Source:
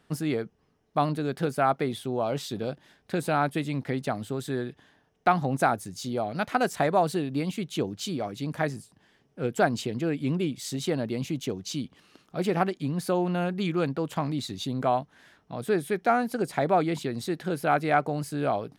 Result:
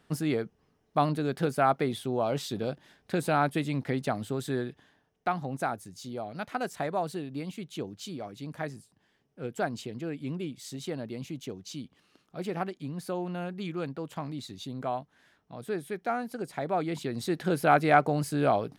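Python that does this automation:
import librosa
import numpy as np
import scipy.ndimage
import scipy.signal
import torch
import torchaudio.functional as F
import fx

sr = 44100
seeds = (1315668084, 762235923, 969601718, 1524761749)

y = fx.gain(x, sr, db=fx.line((4.57, -0.5), (5.33, -7.5), (16.64, -7.5), (17.46, 2.0)))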